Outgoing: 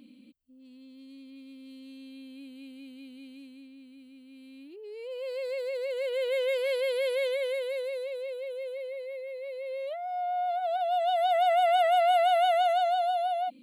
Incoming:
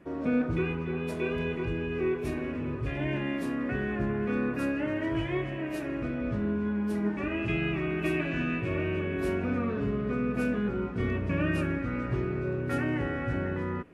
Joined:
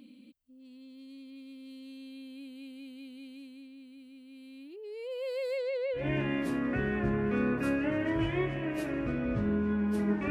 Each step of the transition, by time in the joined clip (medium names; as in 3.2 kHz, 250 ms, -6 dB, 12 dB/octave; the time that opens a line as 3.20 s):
outgoing
5.57–6.09 s: low-pass 6.6 kHz -> 1.7 kHz
6.01 s: go over to incoming from 2.97 s, crossfade 0.16 s